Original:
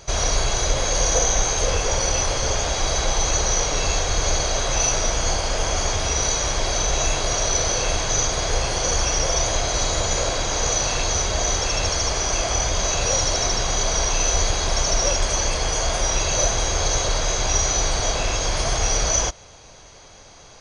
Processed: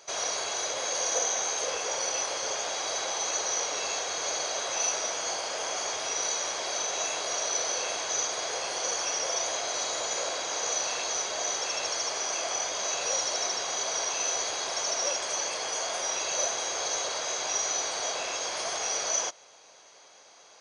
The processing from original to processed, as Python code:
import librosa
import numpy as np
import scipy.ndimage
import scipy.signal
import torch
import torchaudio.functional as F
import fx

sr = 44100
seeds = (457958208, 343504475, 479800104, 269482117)

y = scipy.signal.sosfilt(scipy.signal.butter(2, 450.0, 'highpass', fs=sr, output='sos'), x)
y = y * 10.0 ** (-7.0 / 20.0)